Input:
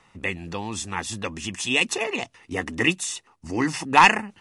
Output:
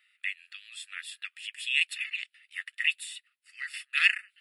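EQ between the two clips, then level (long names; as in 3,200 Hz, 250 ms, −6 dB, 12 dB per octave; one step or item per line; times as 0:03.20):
linear-phase brick-wall high-pass 1,100 Hz
phaser with its sweep stopped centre 2,700 Hz, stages 4
−3.5 dB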